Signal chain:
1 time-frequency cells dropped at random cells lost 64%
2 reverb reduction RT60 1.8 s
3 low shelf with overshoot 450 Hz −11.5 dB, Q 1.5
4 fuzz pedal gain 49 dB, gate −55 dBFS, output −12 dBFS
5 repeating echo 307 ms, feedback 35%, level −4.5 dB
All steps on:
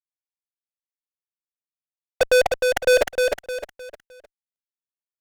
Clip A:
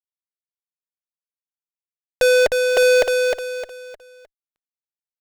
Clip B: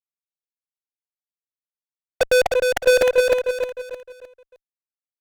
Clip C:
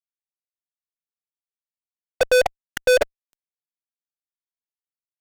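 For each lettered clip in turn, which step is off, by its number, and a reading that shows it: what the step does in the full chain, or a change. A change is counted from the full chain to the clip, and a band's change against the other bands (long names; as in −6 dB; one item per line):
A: 1, 1 kHz band −7.5 dB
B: 2, change in momentary loudness spread +3 LU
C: 5, change in momentary loudness spread −7 LU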